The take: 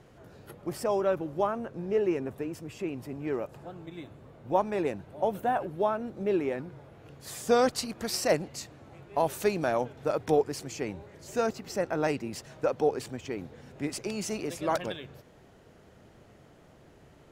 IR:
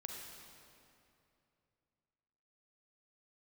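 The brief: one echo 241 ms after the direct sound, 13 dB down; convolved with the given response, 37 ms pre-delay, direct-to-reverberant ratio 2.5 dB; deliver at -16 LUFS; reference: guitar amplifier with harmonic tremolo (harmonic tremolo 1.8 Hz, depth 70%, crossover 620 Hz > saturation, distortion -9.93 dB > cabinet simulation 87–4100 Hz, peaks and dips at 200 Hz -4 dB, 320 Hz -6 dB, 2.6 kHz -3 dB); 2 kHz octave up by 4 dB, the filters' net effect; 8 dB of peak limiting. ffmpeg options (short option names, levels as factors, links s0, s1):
-filter_complex "[0:a]equalizer=f=2000:t=o:g=6,alimiter=limit=0.106:level=0:latency=1,aecho=1:1:241:0.224,asplit=2[s0][s1];[1:a]atrim=start_sample=2205,adelay=37[s2];[s1][s2]afir=irnorm=-1:irlink=0,volume=1[s3];[s0][s3]amix=inputs=2:normalize=0,acrossover=split=620[s4][s5];[s4]aeval=exprs='val(0)*(1-0.7/2+0.7/2*cos(2*PI*1.8*n/s))':c=same[s6];[s5]aeval=exprs='val(0)*(1-0.7/2-0.7/2*cos(2*PI*1.8*n/s))':c=same[s7];[s6][s7]amix=inputs=2:normalize=0,asoftclip=threshold=0.0251,highpass=87,equalizer=f=200:t=q:w=4:g=-4,equalizer=f=320:t=q:w=4:g=-6,equalizer=f=2600:t=q:w=4:g=-3,lowpass=f=4100:w=0.5412,lowpass=f=4100:w=1.3066,volume=15.8"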